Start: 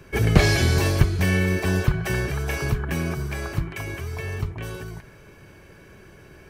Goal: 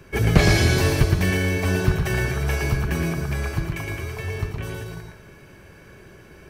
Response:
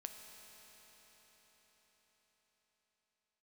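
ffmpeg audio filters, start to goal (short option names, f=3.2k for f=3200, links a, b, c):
-filter_complex "[0:a]asplit=2[a][b];[1:a]atrim=start_sample=2205,afade=t=out:st=0.31:d=0.01,atrim=end_sample=14112,adelay=115[c];[b][c]afir=irnorm=-1:irlink=0,volume=1dB[d];[a][d]amix=inputs=2:normalize=0"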